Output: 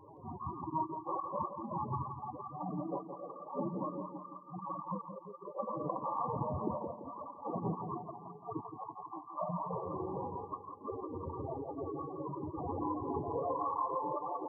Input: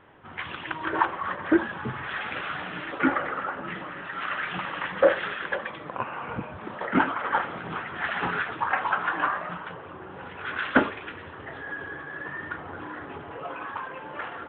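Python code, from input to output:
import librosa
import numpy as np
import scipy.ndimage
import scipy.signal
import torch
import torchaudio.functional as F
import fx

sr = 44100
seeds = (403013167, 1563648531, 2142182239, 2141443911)

y = fx.over_compress(x, sr, threshold_db=-35.0, ratio=-0.5)
y = fx.spec_topn(y, sr, count=16)
y = fx.brickwall_lowpass(y, sr, high_hz=1200.0)
y = fx.echo_feedback(y, sr, ms=169, feedback_pct=49, wet_db=-9)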